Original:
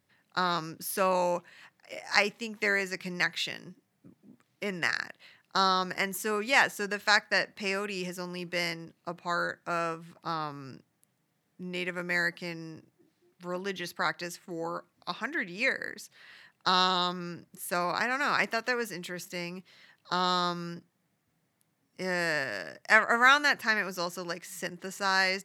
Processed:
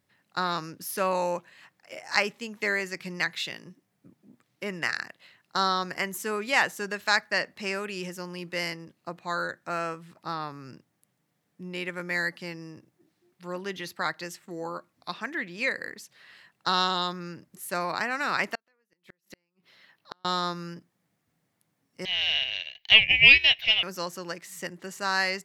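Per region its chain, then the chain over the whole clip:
18.55–20.25 s: high-pass 170 Hz 6 dB/octave + peaking EQ 7.5 kHz -7.5 dB 0.72 oct + inverted gate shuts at -29 dBFS, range -41 dB
22.05–23.83 s: high-pass 960 Hz 24 dB/octave + ring modulator 1.1 kHz + FFT filter 140 Hz 0 dB, 240 Hz -12 dB, 1.3 kHz -7 dB, 2 kHz +14 dB, 4.3 kHz +8 dB, 9.5 kHz -29 dB, 15 kHz +5 dB
whole clip: none

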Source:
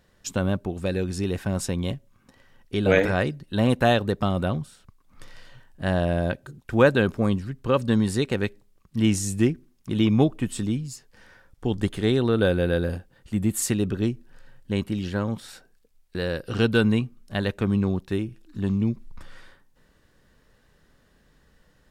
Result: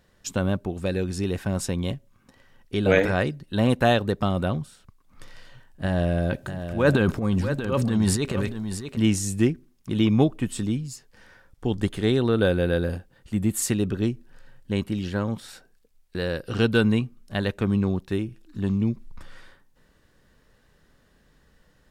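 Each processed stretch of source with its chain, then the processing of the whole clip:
5.84–8.97 s: transient shaper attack -11 dB, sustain +9 dB + delay 636 ms -9.5 dB
whole clip: none

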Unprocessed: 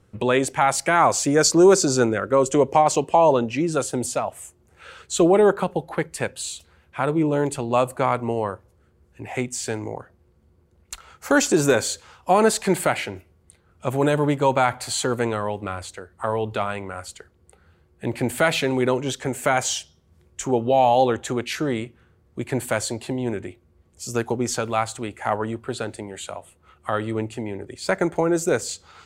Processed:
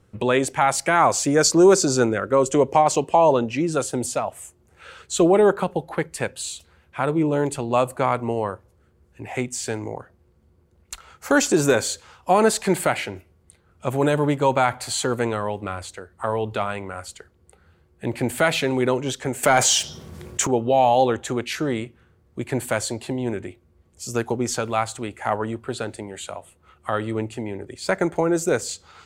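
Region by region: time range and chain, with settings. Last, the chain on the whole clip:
19.43–20.47 s: high-pass 110 Hz + waveshaping leveller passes 1 + level flattener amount 50%
whole clip: none

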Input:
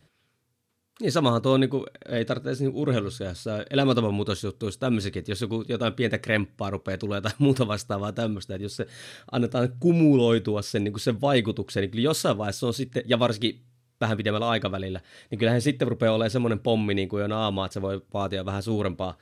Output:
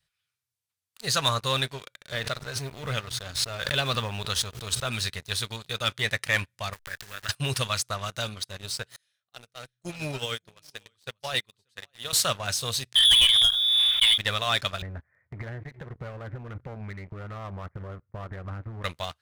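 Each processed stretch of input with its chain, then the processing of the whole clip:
2.14–4.87 s: companding laws mixed up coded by A + treble shelf 4.6 kHz -9 dB + swell ahead of each attack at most 56 dB/s
6.73–7.29 s: send-on-delta sampling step -36 dBFS + peaking EQ 1.7 kHz +14 dB 0.43 oct + compression 4:1, threshold -34 dBFS
8.96–12.13 s: high-pass 130 Hz 6 dB/octave + delay 585 ms -10.5 dB + upward expansion 2.5:1, over -31 dBFS
12.95–14.18 s: frequency inversion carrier 3.6 kHz + swell ahead of each attack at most 24 dB/s
14.82–18.84 s: steep low-pass 2.2 kHz 96 dB/octave + tilt EQ -2.5 dB/octave + compression 5:1, threshold -26 dBFS
whole clip: amplifier tone stack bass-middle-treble 10-0-10; waveshaping leveller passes 3; trim -2 dB

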